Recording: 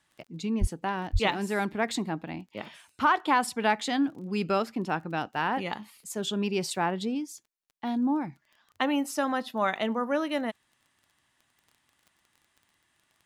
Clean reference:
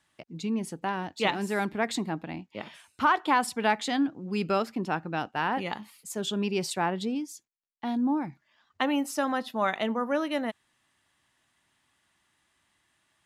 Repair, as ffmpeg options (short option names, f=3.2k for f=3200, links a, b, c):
-filter_complex "[0:a]adeclick=t=4,asplit=3[a][b][c];[a]afade=t=out:st=0.6:d=0.02[d];[b]highpass=f=140:w=0.5412,highpass=f=140:w=1.3066,afade=t=in:st=0.6:d=0.02,afade=t=out:st=0.72:d=0.02[e];[c]afade=t=in:st=0.72:d=0.02[f];[d][e][f]amix=inputs=3:normalize=0,asplit=3[g][h][i];[g]afade=t=out:st=1.12:d=0.02[j];[h]highpass=f=140:w=0.5412,highpass=f=140:w=1.3066,afade=t=in:st=1.12:d=0.02,afade=t=out:st=1.24:d=0.02[k];[i]afade=t=in:st=1.24:d=0.02[l];[j][k][l]amix=inputs=3:normalize=0"